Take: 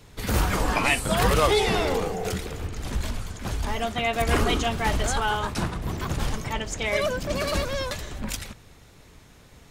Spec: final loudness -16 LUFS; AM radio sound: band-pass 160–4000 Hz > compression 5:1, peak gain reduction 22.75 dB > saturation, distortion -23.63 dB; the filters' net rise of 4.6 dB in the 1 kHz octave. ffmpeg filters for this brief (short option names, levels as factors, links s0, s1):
-af "highpass=160,lowpass=4000,equalizer=f=1000:t=o:g=6,acompressor=threshold=0.0112:ratio=5,asoftclip=threshold=0.0335,volume=18.8"